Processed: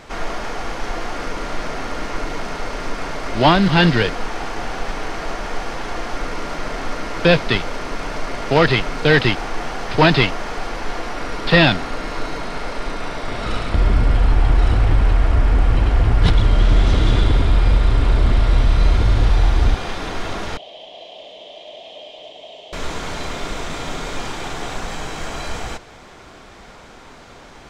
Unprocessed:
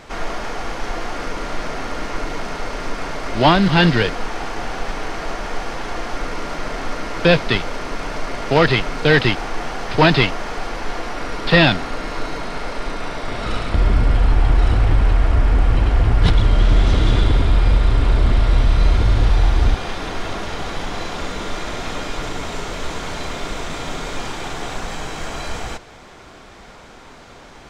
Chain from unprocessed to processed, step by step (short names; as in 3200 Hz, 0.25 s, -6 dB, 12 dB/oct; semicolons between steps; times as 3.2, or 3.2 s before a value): 20.57–22.73 double band-pass 1400 Hz, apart 2.3 oct